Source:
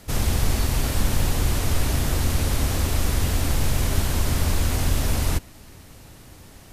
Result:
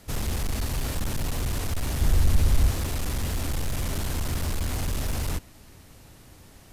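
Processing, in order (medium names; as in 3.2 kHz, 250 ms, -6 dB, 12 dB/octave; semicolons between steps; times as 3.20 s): hard clipper -18.5 dBFS, distortion -12 dB; 2.01–2.71 s: bass shelf 100 Hz +12 dB; trim -4.5 dB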